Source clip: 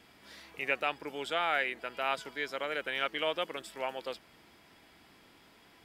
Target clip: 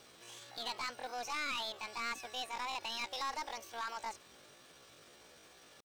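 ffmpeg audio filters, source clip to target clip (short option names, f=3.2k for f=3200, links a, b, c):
-filter_complex "[0:a]aeval=exprs='(tanh(56.2*val(0)+0.1)-tanh(0.1))/56.2':c=same,acrossover=split=4000[a][b];[b]acompressor=threshold=-58dB:ratio=4:attack=1:release=60[c];[a][c]amix=inputs=2:normalize=0,asetrate=76340,aresample=44100,atempo=0.577676,volume=1dB"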